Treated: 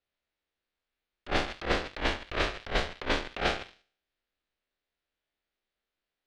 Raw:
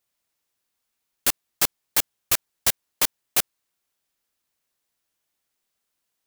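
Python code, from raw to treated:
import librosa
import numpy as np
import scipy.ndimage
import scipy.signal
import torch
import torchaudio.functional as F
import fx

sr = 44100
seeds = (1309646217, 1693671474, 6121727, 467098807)

p1 = fx.spec_trails(x, sr, decay_s=0.57)
p2 = fx.level_steps(p1, sr, step_db=20)
p3 = p1 + (p2 * librosa.db_to_amplitude(-1.0))
p4 = fx.graphic_eq_10(p3, sr, hz=(125, 250, 1000, 4000), db=(-9, -3, -8, 7))
p5 = fx.env_lowpass_down(p4, sr, base_hz=1300.0, full_db=-16.5)
p6 = fx.leveller(p5, sr, passes=3)
p7 = fx.low_shelf(p6, sr, hz=65.0, db=7.0)
p8 = fx.over_compress(p7, sr, threshold_db=-23.0, ratio=-0.5)
p9 = fx.env_lowpass(p8, sr, base_hz=1800.0, full_db=-13.0)
y = p9 * librosa.db_to_amplitude(-4.0)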